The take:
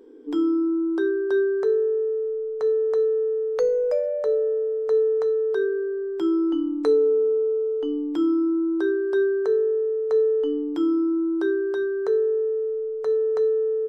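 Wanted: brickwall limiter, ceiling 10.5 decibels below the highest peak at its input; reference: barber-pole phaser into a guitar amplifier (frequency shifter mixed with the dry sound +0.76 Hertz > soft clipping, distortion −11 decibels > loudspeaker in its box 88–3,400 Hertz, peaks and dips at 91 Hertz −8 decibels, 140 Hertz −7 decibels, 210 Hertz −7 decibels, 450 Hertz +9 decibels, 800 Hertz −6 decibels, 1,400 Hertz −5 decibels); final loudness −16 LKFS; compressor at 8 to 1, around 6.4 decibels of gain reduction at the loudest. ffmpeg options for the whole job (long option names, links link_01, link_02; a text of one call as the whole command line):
ffmpeg -i in.wav -filter_complex "[0:a]acompressor=threshold=-23dB:ratio=8,alimiter=limit=-24dB:level=0:latency=1,asplit=2[link_01][link_02];[link_02]afreqshift=0.76[link_03];[link_01][link_03]amix=inputs=2:normalize=1,asoftclip=threshold=-33.5dB,highpass=88,equalizer=frequency=91:width_type=q:width=4:gain=-8,equalizer=frequency=140:width_type=q:width=4:gain=-7,equalizer=frequency=210:width_type=q:width=4:gain=-7,equalizer=frequency=450:width_type=q:width=4:gain=9,equalizer=frequency=800:width_type=q:width=4:gain=-6,equalizer=frequency=1400:width_type=q:width=4:gain=-5,lowpass=frequency=3400:width=0.5412,lowpass=frequency=3400:width=1.3066,volume=15.5dB" out.wav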